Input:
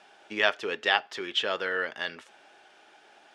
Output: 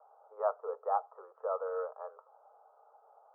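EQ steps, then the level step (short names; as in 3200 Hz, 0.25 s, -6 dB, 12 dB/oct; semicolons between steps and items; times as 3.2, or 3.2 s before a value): Chebyshev band-pass 450–1300 Hz, order 5; air absorption 450 m; 0.0 dB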